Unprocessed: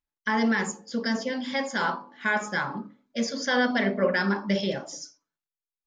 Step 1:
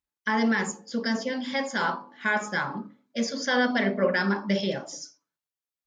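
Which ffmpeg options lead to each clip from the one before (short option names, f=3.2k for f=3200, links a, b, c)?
-af "highpass=44"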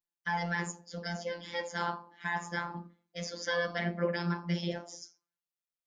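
-af "afftfilt=real='hypot(re,im)*cos(PI*b)':imag='0':win_size=1024:overlap=0.75,volume=-4dB"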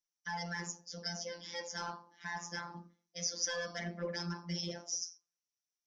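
-af "asoftclip=type=tanh:threshold=-20.5dB,lowpass=f=5.8k:t=q:w=12,volume=-7dB"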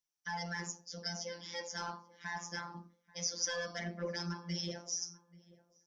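-filter_complex "[0:a]asplit=2[a][b];[b]adelay=835,lowpass=f=1.3k:p=1,volume=-20dB,asplit=2[c][d];[d]adelay=835,lowpass=f=1.3k:p=1,volume=0.17[e];[a][c][e]amix=inputs=3:normalize=0"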